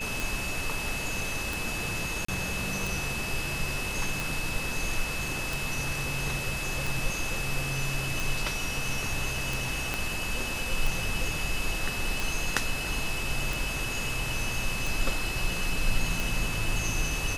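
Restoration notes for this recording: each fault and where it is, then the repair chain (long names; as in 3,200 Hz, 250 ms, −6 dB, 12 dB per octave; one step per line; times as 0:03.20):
scratch tick 45 rpm
whistle 2,600 Hz −34 dBFS
0:02.25–0:02.28: drop-out 34 ms
0:09.94: click −14 dBFS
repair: click removal
notch filter 2,600 Hz, Q 30
repair the gap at 0:02.25, 34 ms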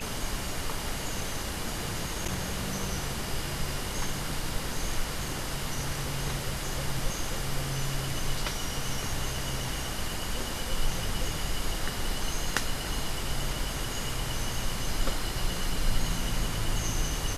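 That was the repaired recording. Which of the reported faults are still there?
0:09.94: click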